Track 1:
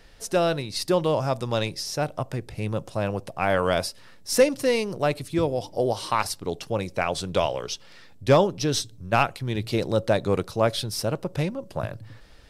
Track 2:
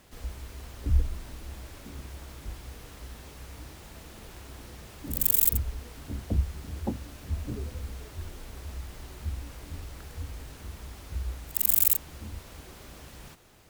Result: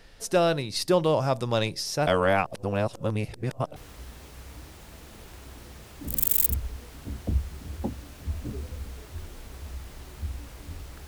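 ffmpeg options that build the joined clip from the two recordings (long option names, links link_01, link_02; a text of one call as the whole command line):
ffmpeg -i cue0.wav -i cue1.wav -filter_complex "[0:a]apad=whole_dur=11.07,atrim=end=11.07,asplit=2[link_01][link_02];[link_01]atrim=end=2.072[link_03];[link_02]atrim=start=2.068:end=3.762,asetpts=PTS-STARTPTS,areverse[link_04];[1:a]atrim=start=2.788:end=10.1[link_05];[link_03][link_04]acrossfade=duration=0.004:curve1=hsin:curve2=hsin[link_06];[link_06][link_05]acrossfade=duration=0.004:curve1=hsin:curve2=hsin" out.wav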